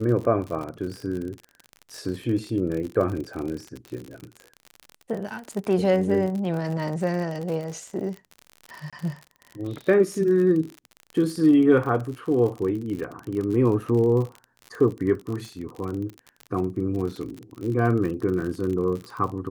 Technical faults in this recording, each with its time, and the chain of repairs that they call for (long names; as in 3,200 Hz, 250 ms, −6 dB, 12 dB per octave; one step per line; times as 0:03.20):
surface crackle 50 per second −30 dBFS
0:08.90–0:08.93: drop-out 26 ms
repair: click removal
repair the gap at 0:08.90, 26 ms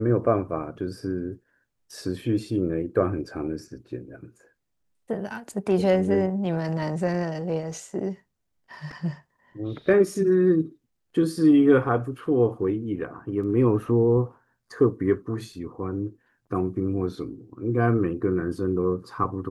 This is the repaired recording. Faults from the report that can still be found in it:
none of them is left